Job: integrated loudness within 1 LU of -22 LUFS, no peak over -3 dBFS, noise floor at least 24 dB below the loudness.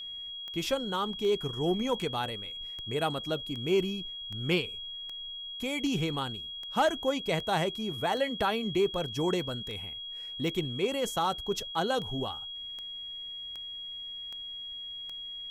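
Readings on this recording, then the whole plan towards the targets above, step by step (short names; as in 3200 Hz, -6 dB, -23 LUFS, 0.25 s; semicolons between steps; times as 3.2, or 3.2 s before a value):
clicks 20; steady tone 3300 Hz; tone level -38 dBFS; loudness -32.0 LUFS; peak -16.5 dBFS; loudness target -22.0 LUFS
-> de-click; notch 3300 Hz, Q 30; gain +10 dB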